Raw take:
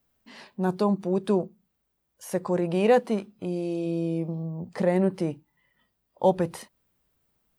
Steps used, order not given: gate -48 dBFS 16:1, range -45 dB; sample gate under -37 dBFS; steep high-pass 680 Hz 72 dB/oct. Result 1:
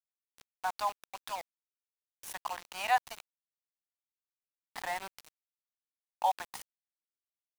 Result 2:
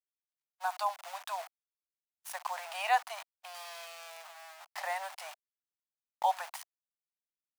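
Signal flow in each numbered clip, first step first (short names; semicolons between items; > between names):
steep high-pass > gate > sample gate; sample gate > steep high-pass > gate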